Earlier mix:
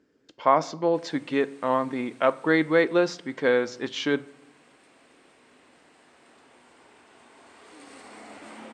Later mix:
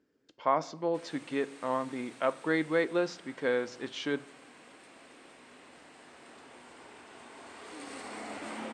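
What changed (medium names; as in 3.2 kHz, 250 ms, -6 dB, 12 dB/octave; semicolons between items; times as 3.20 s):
speech -7.5 dB; background +3.5 dB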